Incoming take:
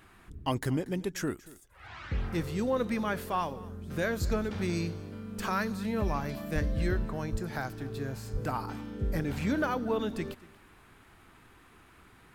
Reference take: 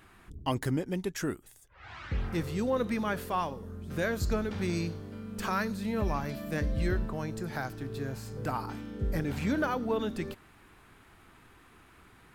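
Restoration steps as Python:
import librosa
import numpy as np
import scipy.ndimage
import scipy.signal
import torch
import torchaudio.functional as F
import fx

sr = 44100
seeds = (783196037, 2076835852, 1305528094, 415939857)

y = fx.highpass(x, sr, hz=140.0, slope=24, at=(6.54, 6.66), fade=0.02)
y = fx.highpass(y, sr, hz=140.0, slope=24, at=(7.31, 7.43), fade=0.02)
y = fx.highpass(y, sr, hz=140.0, slope=24, at=(8.32, 8.44), fade=0.02)
y = fx.fix_echo_inverse(y, sr, delay_ms=235, level_db=-20.5)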